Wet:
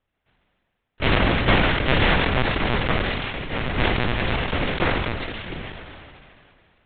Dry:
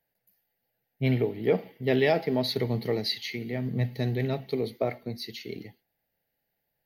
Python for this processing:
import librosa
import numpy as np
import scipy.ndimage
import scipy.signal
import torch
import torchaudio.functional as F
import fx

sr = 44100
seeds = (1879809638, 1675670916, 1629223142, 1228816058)

y = fx.spec_flatten(x, sr, power=0.14)
y = scipy.signal.sosfilt(scipy.signal.butter(2, 2800.0, 'lowpass', fs=sr, output='sos'), y)
y = fx.peak_eq(y, sr, hz=230.0, db=8.0, octaves=0.93)
y = fx.lpc_vocoder(y, sr, seeds[0], excitation='pitch_kept', order=10)
y = fx.sustainer(y, sr, db_per_s=25.0)
y = y * librosa.db_to_amplitude(8.0)